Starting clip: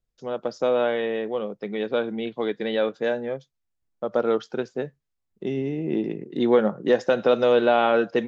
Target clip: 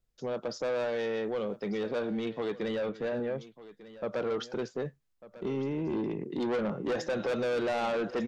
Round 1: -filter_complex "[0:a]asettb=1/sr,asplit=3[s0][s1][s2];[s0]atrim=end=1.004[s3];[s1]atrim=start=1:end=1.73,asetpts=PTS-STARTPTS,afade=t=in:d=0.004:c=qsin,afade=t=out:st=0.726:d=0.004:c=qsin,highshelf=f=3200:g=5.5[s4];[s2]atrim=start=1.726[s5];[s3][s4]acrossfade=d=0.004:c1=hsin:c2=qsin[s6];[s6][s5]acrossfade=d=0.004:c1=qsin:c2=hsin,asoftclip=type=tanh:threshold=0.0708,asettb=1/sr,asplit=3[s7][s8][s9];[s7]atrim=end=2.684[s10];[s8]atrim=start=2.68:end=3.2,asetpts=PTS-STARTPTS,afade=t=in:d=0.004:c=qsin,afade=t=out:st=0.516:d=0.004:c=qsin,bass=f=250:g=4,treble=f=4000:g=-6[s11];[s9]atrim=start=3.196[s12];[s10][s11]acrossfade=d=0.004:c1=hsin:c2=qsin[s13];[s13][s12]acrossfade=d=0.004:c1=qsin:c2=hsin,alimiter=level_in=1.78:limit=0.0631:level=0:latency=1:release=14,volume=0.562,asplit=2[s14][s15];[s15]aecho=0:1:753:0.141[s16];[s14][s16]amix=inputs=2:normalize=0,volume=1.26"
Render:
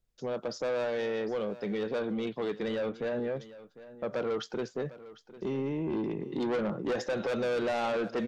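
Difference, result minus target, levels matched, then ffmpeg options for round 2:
echo 444 ms early
-filter_complex "[0:a]asettb=1/sr,asplit=3[s0][s1][s2];[s0]atrim=end=1.004[s3];[s1]atrim=start=1:end=1.73,asetpts=PTS-STARTPTS,afade=t=in:d=0.004:c=qsin,afade=t=out:st=0.726:d=0.004:c=qsin,highshelf=f=3200:g=5.5[s4];[s2]atrim=start=1.726[s5];[s3][s4]acrossfade=d=0.004:c1=hsin:c2=qsin[s6];[s6][s5]acrossfade=d=0.004:c1=qsin:c2=hsin,asoftclip=type=tanh:threshold=0.0708,asettb=1/sr,asplit=3[s7][s8][s9];[s7]atrim=end=2.684[s10];[s8]atrim=start=2.68:end=3.2,asetpts=PTS-STARTPTS,afade=t=in:d=0.004:c=qsin,afade=t=out:st=0.516:d=0.004:c=qsin,bass=f=250:g=4,treble=f=4000:g=-6[s11];[s9]atrim=start=3.196[s12];[s10][s11]acrossfade=d=0.004:c1=hsin:c2=qsin[s13];[s13][s12]acrossfade=d=0.004:c1=qsin:c2=hsin,alimiter=level_in=1.78:limit=0.0631:level=0:latency=1:release=14,volume=0.562,asplit=2[s14][s15];[s15]aecho=0:1:1197:0.141[s16];[s14][s16]amix=inputs=2:normalize=0,volume=1.26"

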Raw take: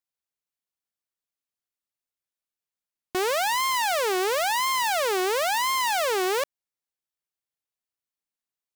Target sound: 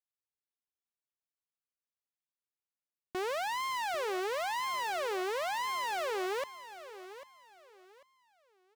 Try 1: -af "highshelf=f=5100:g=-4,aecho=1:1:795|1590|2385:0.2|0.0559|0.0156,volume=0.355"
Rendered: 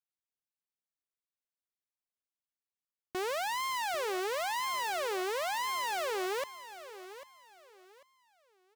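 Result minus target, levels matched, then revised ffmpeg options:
8 kHz band +3.5 dB
-af "highshelf=f=5100:g=-10,aecho=1:1:795|1590|2385:0.2|0.0559|0.0156,volume=0.355"

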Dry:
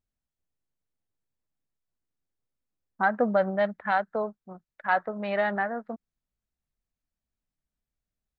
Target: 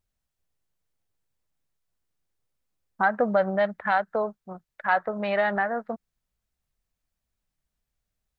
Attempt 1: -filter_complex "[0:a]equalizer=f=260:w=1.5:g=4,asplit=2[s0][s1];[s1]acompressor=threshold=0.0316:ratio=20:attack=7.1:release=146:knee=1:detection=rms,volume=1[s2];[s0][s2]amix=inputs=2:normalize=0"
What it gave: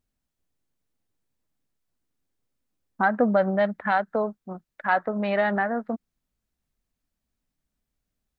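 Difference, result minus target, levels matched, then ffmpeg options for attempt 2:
250 Hz band +4.5 dB
-filter_complex "[0:a]equalizer=f=260:w=1.5:g=-5,asplit=2[s0][s1];[s1]acompressor=threshold=0.0316:ratio=20:attack=7.1:release=146:knee=1:detection=rms,volume=1[s2];[s0][s2]amix=inputs=2:normalize=0"

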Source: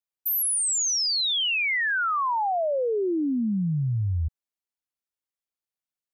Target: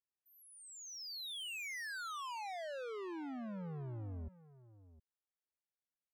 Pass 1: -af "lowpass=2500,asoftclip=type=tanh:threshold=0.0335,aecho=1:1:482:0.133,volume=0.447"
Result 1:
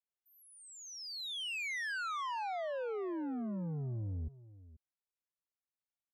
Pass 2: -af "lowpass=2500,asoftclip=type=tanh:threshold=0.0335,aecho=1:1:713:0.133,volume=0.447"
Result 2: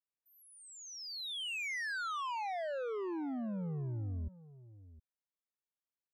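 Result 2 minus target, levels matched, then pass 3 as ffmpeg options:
saturation: distortion -5 dB
-af "lowpass=2500,asoftclip=type=tanh:threshold=0.0158,aecho=1:1:713:0.133,volume=0.447"

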